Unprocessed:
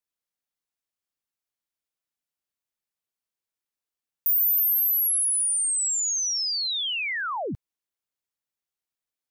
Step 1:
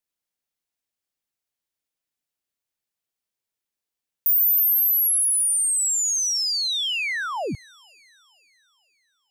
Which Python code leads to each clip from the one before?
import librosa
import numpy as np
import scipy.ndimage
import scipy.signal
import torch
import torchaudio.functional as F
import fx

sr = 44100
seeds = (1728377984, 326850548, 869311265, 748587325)

y = fx.peak_eq(x, sr, hz=1200.0, db=-3.0, octaves=0.77)
y = fx.echo_wet_highpass(y, sr, ms=474, feedback_pct=45, hz=1700.0, wet_db=-22)
y = y * 10.0 ** (3.0 / 20.0)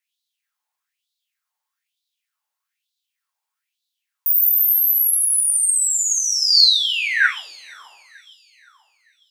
y = fx.rev_double_slope(x, sr, seeds[0], early_s=0.64, late_s=1.8, knee_db=-28, drr_db=0.0)
y = fx.filter_lfo_highpass(y, sr, shape='sine', hz=1.1, low_hz=850.0, high_hz=3900.0, q=5.9)
y = np.clip(y, -10.0 ** (-2.5 / 20.0), 10.0 ** (-2.5 / 20.0))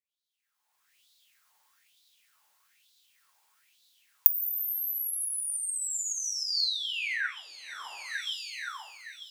y = fx.recorder_agc(x, sr, target_db=-8.5, rise_db_per_s=31.0, max_gain_db=30)
y = y * 10.0 ** (-16.0 / 20.0)